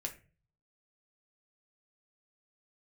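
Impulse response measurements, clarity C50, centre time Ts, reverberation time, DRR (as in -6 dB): 13.0 dB, 11 ms, 0.35 s, 1.5 dB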